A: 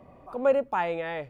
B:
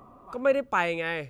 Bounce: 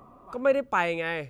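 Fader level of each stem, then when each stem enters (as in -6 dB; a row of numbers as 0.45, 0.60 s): -17.0, -0.5 dB; 0.00, 0.00 s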